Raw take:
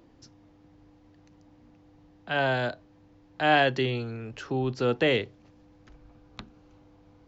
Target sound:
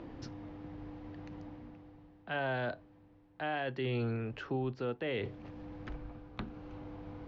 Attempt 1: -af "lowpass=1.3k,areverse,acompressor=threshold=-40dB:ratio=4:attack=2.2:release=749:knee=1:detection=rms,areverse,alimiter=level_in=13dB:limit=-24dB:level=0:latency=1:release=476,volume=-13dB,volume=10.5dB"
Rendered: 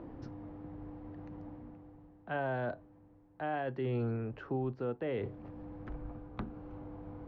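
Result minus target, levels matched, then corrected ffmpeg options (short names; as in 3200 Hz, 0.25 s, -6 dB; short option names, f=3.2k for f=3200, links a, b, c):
4000 Hz band -10.5 dB
-af "lowpass=2.9k,areverse,acompressor=threshold=-40dB:ratio=4:attack=2.2:release=749:knee=1:detection=rms,areverse,alimiter=level_in=13dB:limit=-24dB:level=0:latency=1:release=476,volume=-13dB,volume=10.5dB"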